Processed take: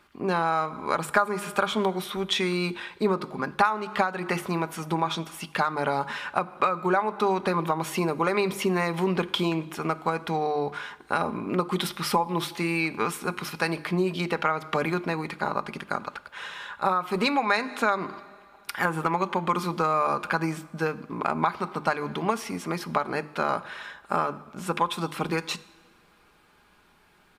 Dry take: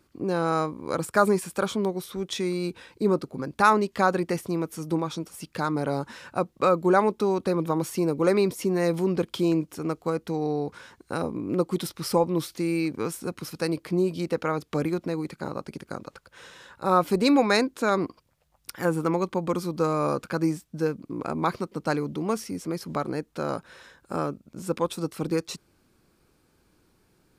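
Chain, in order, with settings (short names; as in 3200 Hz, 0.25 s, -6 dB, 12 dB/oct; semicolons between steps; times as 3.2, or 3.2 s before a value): band shelf 1600 Hz +10.5 dB 2.7 oct; notches 50/100/150/200/250/300/350 Hz; reverb, pre-delay 3 ms, DRR 16 dB; compressor 16:1, threshold -20 dBFS, peak gain reduction 18 dB; comb 4.9 ms, depth 33%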